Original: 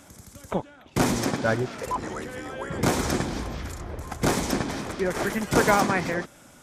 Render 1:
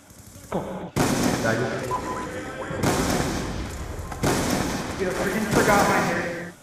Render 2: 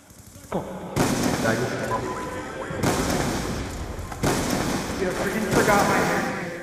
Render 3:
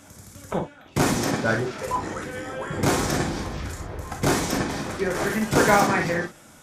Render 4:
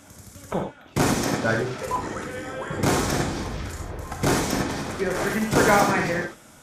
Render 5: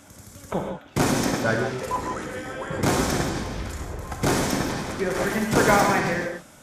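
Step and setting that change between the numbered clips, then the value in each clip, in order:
reverb whose tail is shaped and stops, gate: 320, 500, 80, 120, 200 milliseconds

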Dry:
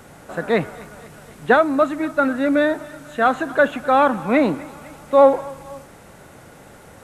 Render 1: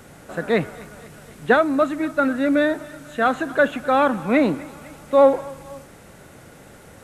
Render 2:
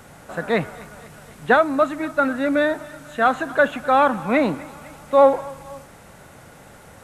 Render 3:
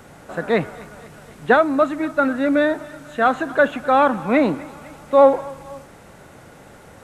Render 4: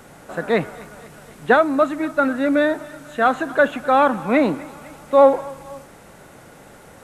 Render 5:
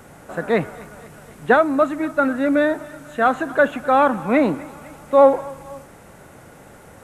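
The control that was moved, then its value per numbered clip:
parametric band, centre frequency: 900, 350, 12,000, 87, 4,100 Hertz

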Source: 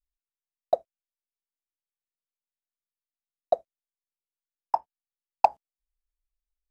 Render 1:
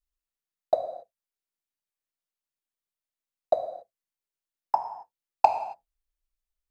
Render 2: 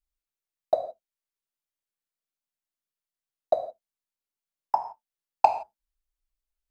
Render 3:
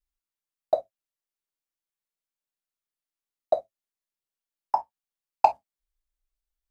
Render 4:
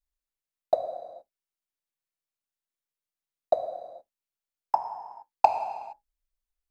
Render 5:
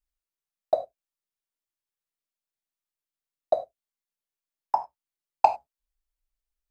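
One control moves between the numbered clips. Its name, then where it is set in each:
reverb whose tail is shaped and stops, gate: 300, 190, 80, 490, 120 milliseconds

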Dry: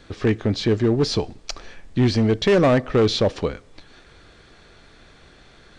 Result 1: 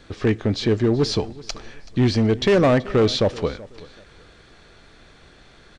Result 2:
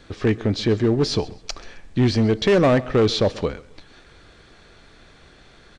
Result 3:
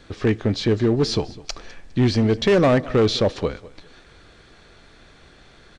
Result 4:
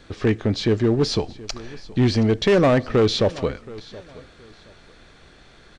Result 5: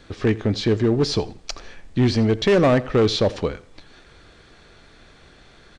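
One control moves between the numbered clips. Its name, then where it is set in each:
repeating echo, delay time: 379, 133, 204, 724, 84 milliseconds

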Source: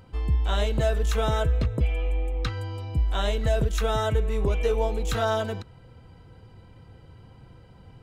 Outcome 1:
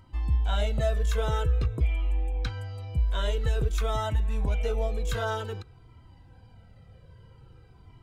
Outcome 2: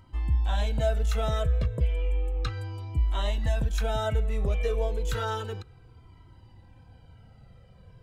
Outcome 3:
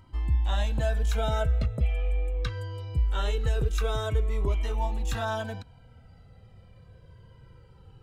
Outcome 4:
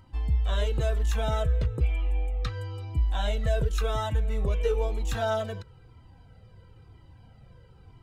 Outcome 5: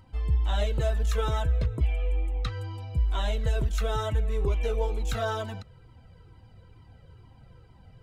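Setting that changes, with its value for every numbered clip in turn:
flanger whose copies keep moving one way, speed: 0.5, 0.32, 0.22, 1, 2.2 Hertz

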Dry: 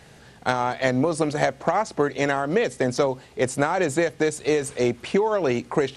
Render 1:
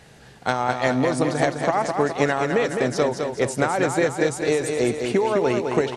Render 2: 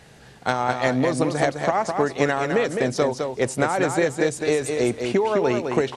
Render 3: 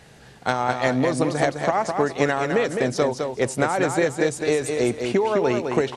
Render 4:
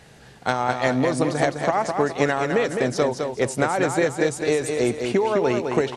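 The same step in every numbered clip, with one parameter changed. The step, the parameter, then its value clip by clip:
repeating echo, feedback: 54, 15, 23, 36%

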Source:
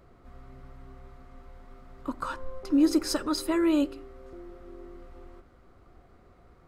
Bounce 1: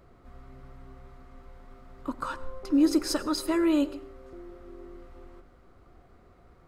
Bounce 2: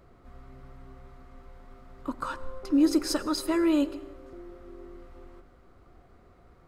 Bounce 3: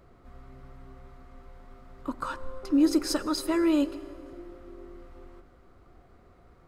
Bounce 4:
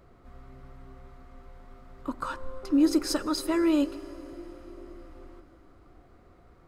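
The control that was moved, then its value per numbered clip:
dense smooth reverb, RT60: 0.51, 1.1, 2.4, 4.9 seconds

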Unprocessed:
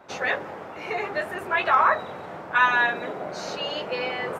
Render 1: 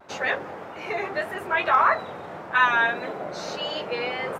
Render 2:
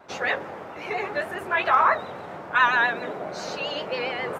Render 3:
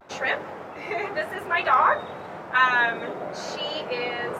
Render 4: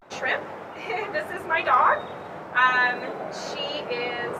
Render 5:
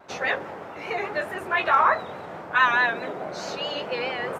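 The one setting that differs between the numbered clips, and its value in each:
pitch vibrato, speed: 1.7, 7.4, 0.9, 0.41, 4.7 Hertz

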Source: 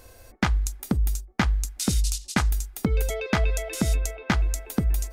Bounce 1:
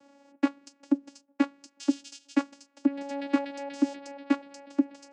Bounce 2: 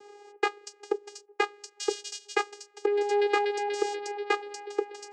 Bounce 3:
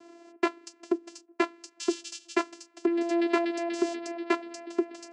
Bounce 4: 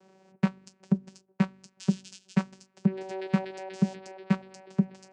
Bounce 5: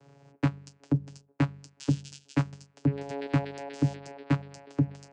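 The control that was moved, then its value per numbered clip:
channel vocoder, frequency: 280, 410, 340, 190, 140 Hertz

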